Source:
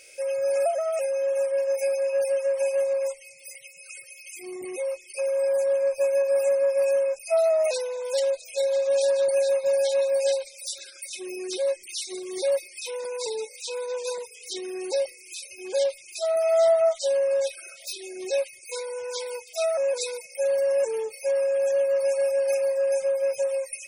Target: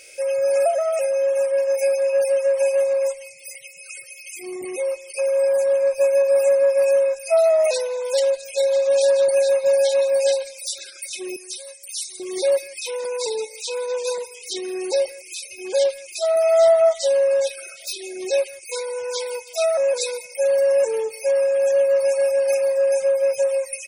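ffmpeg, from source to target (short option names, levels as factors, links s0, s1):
-filter_complex "[0:a]asettb=1/sr,asplit=3[s0][s1][s2];[s0]atrim=end=11.364[s3];[s1]atrim=start=11.36:end=12.2,asetpts=PTS-STARTPTS,afade=t=in:d=0.004:c=qsin,afade=t=out:st=0.836:d=0.004:c=qsin,aderivative[s4];[s2]atrim=start=12.196[s5];[s3][s4]acrossfade=d=0.004:c1=hsin:c2=qsin[s6];[s6][s5]acrossfade=d=0.004:c1=qsin:c2=hsin,asplit=2[s7][s8];[s8]adelay=160,highpass=300,lowpass=3400,asoftclip=type=hard:threshold=0.0668,volume=0.112[s9];[s7][s9]amix=inputs=2:normalize=0,volume=1.78"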